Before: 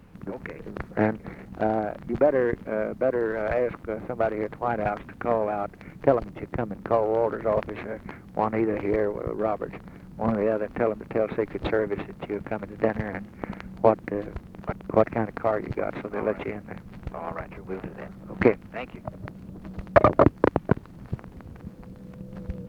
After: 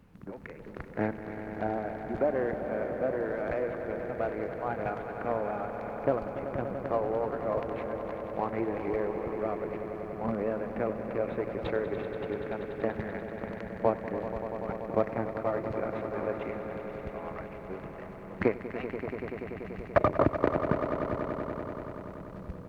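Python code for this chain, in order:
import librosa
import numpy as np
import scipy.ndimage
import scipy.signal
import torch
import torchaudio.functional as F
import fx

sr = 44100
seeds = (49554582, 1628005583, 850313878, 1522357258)

y = fx.echo_swell(x, sr, ms=96, loudest=5, wet_db=-12.0)
y = y * 10.0 ** (-7.5 / 20.0)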